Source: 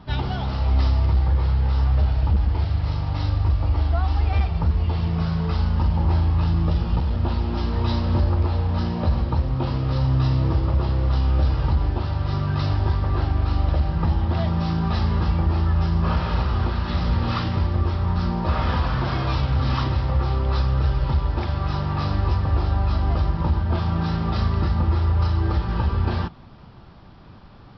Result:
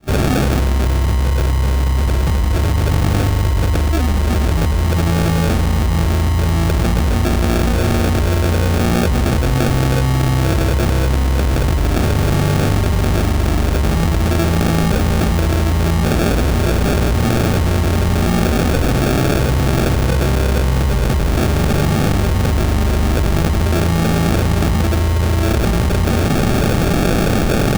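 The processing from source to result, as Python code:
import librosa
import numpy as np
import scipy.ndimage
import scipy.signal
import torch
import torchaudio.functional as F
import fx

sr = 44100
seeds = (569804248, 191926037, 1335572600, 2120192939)

y = fx.fade_in_head(x, sr, length_s=4.57)
y = fx.bass_treble(y, sr, bass_db=-7, treble_db=12)
y = fx.sample_hold(y, sr, seeds[0], rate_hz=1000.0, jitter_pct=0)
y = fx.env_flatten(y, sr, amount_pct=100)
y = y * 10.0 ** (7.5 / 20.0)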